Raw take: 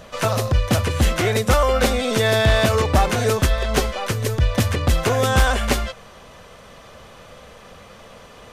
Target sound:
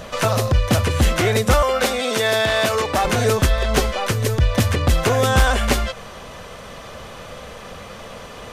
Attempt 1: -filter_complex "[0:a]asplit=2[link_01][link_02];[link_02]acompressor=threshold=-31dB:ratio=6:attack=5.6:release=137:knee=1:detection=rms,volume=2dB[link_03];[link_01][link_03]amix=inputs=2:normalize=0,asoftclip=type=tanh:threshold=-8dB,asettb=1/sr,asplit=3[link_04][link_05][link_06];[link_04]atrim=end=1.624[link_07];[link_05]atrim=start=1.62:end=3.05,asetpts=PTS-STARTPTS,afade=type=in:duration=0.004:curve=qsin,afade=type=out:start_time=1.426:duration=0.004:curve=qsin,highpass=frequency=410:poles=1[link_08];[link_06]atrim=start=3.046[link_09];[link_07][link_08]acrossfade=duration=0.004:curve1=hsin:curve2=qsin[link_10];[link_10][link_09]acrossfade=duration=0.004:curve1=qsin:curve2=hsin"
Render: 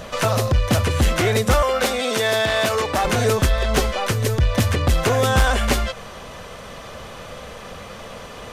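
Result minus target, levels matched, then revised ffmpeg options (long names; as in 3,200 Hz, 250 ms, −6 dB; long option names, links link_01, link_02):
soft clipping: distortion +13 dB
-filter_complex "[0:a]asplit=2[link_01][link_02];[link_02]acompressor=threshold=-31dB:ratio=6:attack=5.6:release=137:knee=1:detection=rms,volume=2dB[link_03];[link_01][link_03]amix=inputs=2:normalize=0,asoftclip=type=tanh:threshold=-0.5dB,asettb=1/sr,asplit=3[link_04][link_05][link_06];[link_04]atrim=end=1.624[link_07];[link_05]atrim=start=1.62:end=3.05,asetpts=PTS-STARTPTS,afade=type=in:duration=0.004:curve=qsin,afade=type=out:start_time=1.426:duration=0.004:curve=qsin,highpass=frequency=410:poles=1[link_08];[link_06]atrim=start=3.046[link_09];[link_07][link_08]acrossfade=duration=0.004:curve1=hsin:curve2=qsin[link_10];[link_10][link_09]acrossfade=duration=0.004:curve1=qsin:curve2=hsin"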